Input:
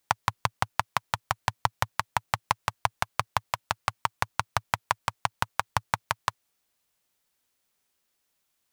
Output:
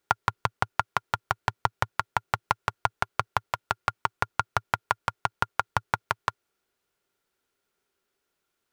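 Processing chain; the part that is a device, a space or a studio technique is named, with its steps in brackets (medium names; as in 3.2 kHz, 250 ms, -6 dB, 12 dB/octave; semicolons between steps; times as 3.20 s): inside a helmet (treble shelf 4.6 kHz -8.5 dB; small resonant body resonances 390/1400 Hz, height 11 dB, ringing for 35 ms)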